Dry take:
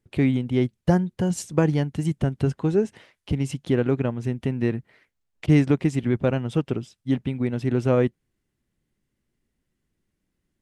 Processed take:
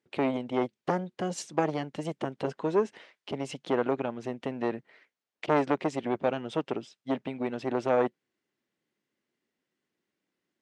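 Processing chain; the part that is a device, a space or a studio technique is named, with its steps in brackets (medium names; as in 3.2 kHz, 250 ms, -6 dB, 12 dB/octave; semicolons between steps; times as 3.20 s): public-address speaker with an overloaded transformer (transformer saturation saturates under 730 Hz; band-pass 330–5800 Hz)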